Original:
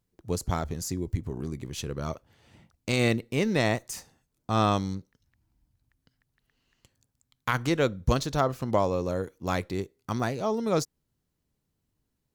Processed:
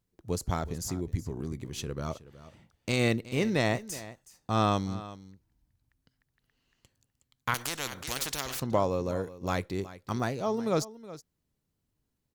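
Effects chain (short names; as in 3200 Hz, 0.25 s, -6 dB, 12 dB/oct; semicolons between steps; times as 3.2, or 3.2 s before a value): echo 0.37 s -16.5 dB; 7.54–8.6 spectral compressor 4:1; gain -2 dB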